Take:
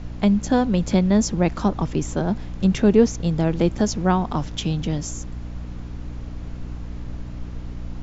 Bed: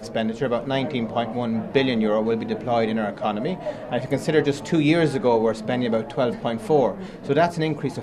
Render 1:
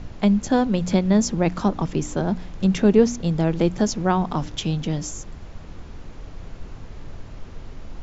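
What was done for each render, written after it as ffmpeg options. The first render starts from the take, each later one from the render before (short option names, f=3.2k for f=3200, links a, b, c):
-af "bandreject=f=60:t=h:w=4,bandreject=f=120:t=h:w=4,bandreject=f=180:t=h:w=4,bandreject=f=240:t=h:w=4,bandreject=f=300:t=h:w=4"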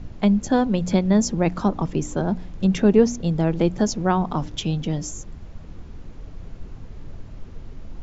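-af "afftdn=nr=6:nf=-40"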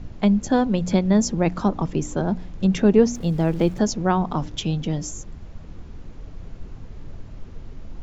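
-filter_complex "[0:a]asettb=1/sr,asplit=3[a][b][c];[a]atrim=end=3.154[d];[b]atrim=start=3.15:end=3.79,asetpts=PTS-STARTPTS,afade=t=in:d=0.004:c=qsin,afade=t=out:st=0.636:d=0.004:c=qsin,aeval=exprs='val(0)*gte(abs(val(0)),0.00841)':c=same[e];[c]atrim=start=3.786[f];[d][e]acrossfade=d=0.004:c1=hsin:c2=qsin[g];[g][f]acrossfade=d=0.004:c1=qsin:c2=hsin"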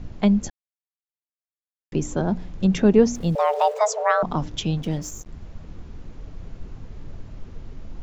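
-filter_complex "[0:a]asettb=1/sr,asplit=3[a][b][c];[a]atrim=end=3.354[d];[b]atrim=start=3.35:end=4.23,asetpts=PTS-STARTPTS,afade=t=in:d=0.004:c=qsin,afade=t=out:st=0.876:d=0.004:c=qsin,afreqshift=420[e];[c]atrim=start=4.226[f];[d][e]acrossfade=d=0.004:c1=hsin:c2=qsin[g];[g][f]acrossfade=d=0.004:c1=qsin:c2=hsin,asplit=3[h][i][j];[h]afade=t=out:st=4.76:d=0.02[k];[i]aeval=exprs='sgn(val(0))*max(abs(val(0))-0.00891,0)':c=same,afade=t=in:st=4.76:d=0.02,afade=t=out:st=5.31:d=0.02[l];[j]afade=t=in:st=5.31:d=0.02[m];[k][l][m]amix=inputs=3:normalize=0,asplit=3[n][o][p];[n]atrim=end=0.5,asetpts=PTS-STARTPTS,afade=t=out:st=0.496:d=0.004:c=hsin[q];[o]atrim=start=0.5:end=1.92,asetpts=PTS-STARTPTS,volume=0[r];[p]atrim=start=1.92,asetpts=PTS-STARTPTS,afade=t=in:d=0.004:c=hsin[s];[q][r][s]concat=n=3:v=0:a=1"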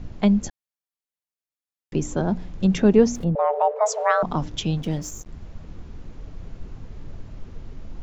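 -filter_complex "[0:a]asettb=1/sr,asplit=3[a][b][c];[a]atrim=end=3.244[d];[b]atrim=start=3.24:end=3.86,asetpts=PTS-STARTPTS,afade=t=in:d=0.004:c=qsin,afade=t=out:st=0.616:d=0.004:c=qsin,lowpass=1.2k[e];[c]atrim=start=3.856[f];[d][e]acrossfade=d=0.004:c1=hsin:c2=qsin[g];[g][f]acrossfade=d=0.004:c1=qsin:c2=hsin"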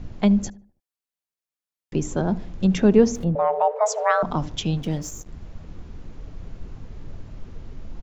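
-filter_complex "[0:a]asplit=2[a][b];[b]adelay=75,lowpass=f=1.3k:p=1,volume=-19dB,asplit=2[c][d];[d]adelay=75,lowpass=f=1.3k:p=1,volume=0.49,asplit=2[e][f];[f]adelay=75,lowpass=f=1.3k:p=1,volume=0.49,asplit=2[g][h];[h]adelay=75,lowpass=f=1.3k:p=1,volume=0.49[i];[a][c][e][g][i]amix=inputs=5:normalize=0"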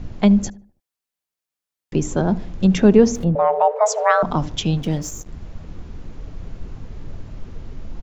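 -af "volume=4dB,alimiter=limit=-2dB:level=0:latency=1"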